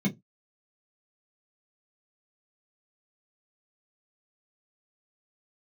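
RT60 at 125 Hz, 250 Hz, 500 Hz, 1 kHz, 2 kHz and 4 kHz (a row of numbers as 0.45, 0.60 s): 0.25, 0.20, 0.15, 0.15, 0.10, 0.10 s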